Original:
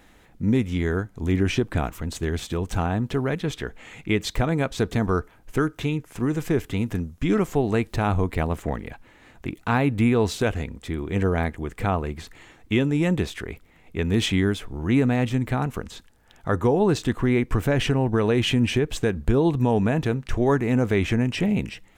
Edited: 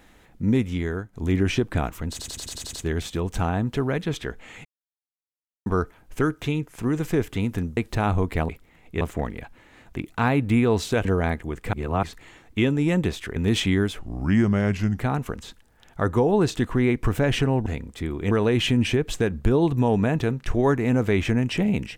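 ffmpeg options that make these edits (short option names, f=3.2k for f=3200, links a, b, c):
-filter_complex "[0:a]asplit=22[a][b][c][d][e][f][g][h][i][j][k][l][m][n][o][p][q][r][s][t][u][v];[a]atrim=end=1.13,asetpts=PTS-STARTPTS,afade=t=out:st=0.6:d=0.53:silence=0.398107[w];[b]atrim=start=1.13:end=2.192,asetpts=PTS-STARTPTS,afade=t=in:d=0.004:c=hsin:silence=0.398107[x];[c]atrim=start=2.098:end=2.192[y];[d]atrim=start=2.098:end=2.192[z];[e]atrim=start=2.098:end=2.192[aa];[f]atrim=start=2.098:end=2.192[ab];[g]atrim=start=2.098:end=2.192[ac];[h]atrim=start=2.098:end=2.192[ad];[i]atrim=start=2.098:end=4.02,asetpts=PTS-STARTPTS,afade=t=out:st=1.918:d=0.004:c=hsin[ae];[j]atrim=start=4.02:end=5.03,asetpts=PTS-STARTPTS,volume=0[af];[k]atrim=start=5.03:end=7.142,asetpts=PTS-STARTPTS,afade=t=in:d=0.004:c=hsin[ag];[l]atrim=start=7.778:end=8.502[ah];[m]atrim=start=13.498:end=14.022[ai];[n]atrim=start=8.498:end=10.542[aj];[o]atrim=start=11.188:end=11.872[ak];[p]atrim=start=11.868:end=12.172,asetpts=PTS-STARTPTS,areverse[al];[q]atrim=start=12.168:end=13.502[am];[r]atrim=start=14.018:end=14.654[an];[s]atrim=start=14.65:end=15.48,asetpts=PTS-STARTPTS,asetrate=36162,aresample=44100[ao];[t]atrim=start=15.476:end=18.142[ap];[u]atrim=start=10.538:end=11.192[aq];[v]atrim=start=18.138[ar];[w][x]concat=n=2:v=0:a=1[as];[as][y]acrossfade=d=0.004:c1=hsin:c2=hsin[at];[at][z]acrossfade=d=0.004:c1=hsin:c2=hsin[au];[au][aa]acrossfade=d=0.004:c1=hsin:c2=hsin[av];[av][ab]acrossfade=d=0.004:c1=hsin:c2=hsin[aw];[aw][ac]acrossfade=d=0.004:c1=hsin:c2=hsin[ax];[ax][ad]acrossfade=d=0.004:c1=hsin:c2=hsin[ay];[ae][af][ag]concat=n=3:v=0:a=1[az];[ay][az]acrossfade=d=0.004:c1=hsin:c2=hsin[ba];[ba][ah]acrossfade=d=0.004:c1=hsin:c2=hsin[bb];[bb][ai]acrossfade=d=0.004:c1=hsin:c2=hsin[bc];[bc][aj]acrossfade=d=0.004:c1=hsin:c2=hsin[bd];[bd][ak]acrossfade=d=0.004:c1=hsin:c2=hsin[be];[be][al]acrossfade=d=0.004:c1=hsin:c2=hsin[bf];[bf][am]acrossfade=d=0.004:c1=hsin:c2=hsin[bg];[bg][an]acrossfade=d=0.004:c1=hsin:c2=hsin[bh];[bh][ao]acrossfade=d=0.004:c1=hsin:c2=hsin[bi];[bi][ap]acrossfade=d=0.004:c1=hsin:c2=hsin[bj];[bj][aq]acrossfade=d=0.004:c1=hsin:c2=hsin[bk];[bk][ar]acrossfade=d=0.004:c1=hsin:c2=hsin"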